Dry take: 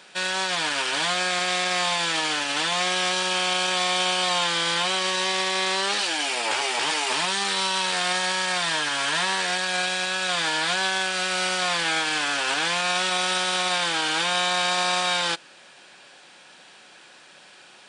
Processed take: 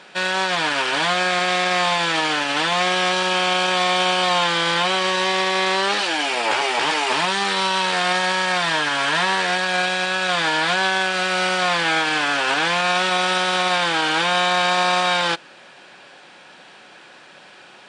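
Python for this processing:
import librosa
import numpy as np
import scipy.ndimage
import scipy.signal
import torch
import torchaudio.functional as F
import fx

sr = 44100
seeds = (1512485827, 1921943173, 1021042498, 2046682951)

y = fx.lowpass(x, sr, hz=2400.0, slope=6)
y = y * librosa.db_to_amplitude(7.0)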